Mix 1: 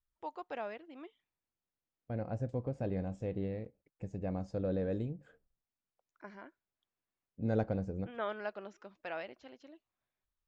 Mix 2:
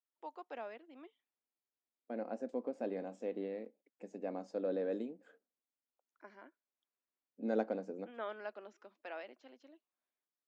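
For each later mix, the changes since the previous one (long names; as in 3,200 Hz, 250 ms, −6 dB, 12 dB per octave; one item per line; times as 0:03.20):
first voice −4.5 dB
master: add elliptic high-pass filter 230 Hz, stop band 50 dB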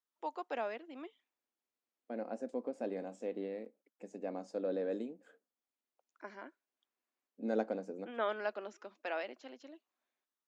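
first voice +7.0 dB
master: remove high-frequency loss of the air 68 metres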